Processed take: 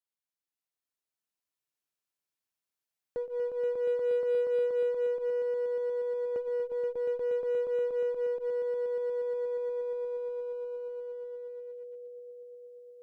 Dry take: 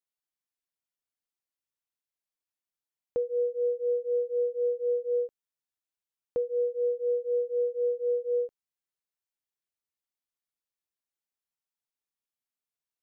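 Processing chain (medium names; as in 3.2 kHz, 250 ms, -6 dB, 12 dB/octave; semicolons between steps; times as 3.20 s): high-pass 110 Hz 6 dB/octave; echo with a slow build-up 119 ms, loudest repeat 8, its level -6 dB; in parallel at -5 dB: one-sided clip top -37 dBFS, bottom -25 dBFS; on the sum: trim -8 dB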